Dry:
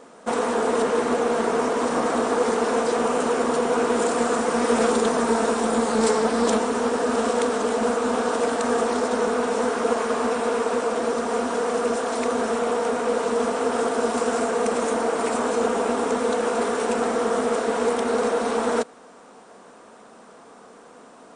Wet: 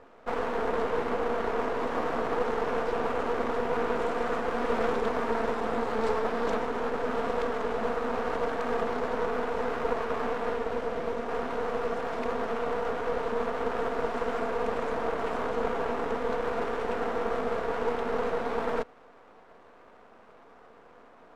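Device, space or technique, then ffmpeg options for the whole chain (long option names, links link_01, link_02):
crystal radio: -filter_complex "[0:a]asettb=1/sr,asplit=3[link_01][link_02][link_03];[link_01]atrim=end=10.544[link_04];[link_02]atrim=start=10.54:end=11.28,asetpts=PTS-STARTPTS,afade=type=in:duration=0.004:curve=qsin,afade=type=out:start_time=0.736:duration=0.004:curve=qsin,equalizer=frequency=1100:width_type=o:width=0.77:gain=-5.5[link_05];[link_03]atrim=start=11.276[link_06];[link_04][link_05]acrossfade=duration=0.004:curve1=hsin:curve2=qsin[link_07];[link_07][link_06]acrossfade=duration=0.004:curve1=qsin:curve2=hsin,highpass=270,lowpass=2500,aeval=exprs='if(lt(val(0),0),0.251*val(0),val(0))':channel_layout=same,volume=-3dB"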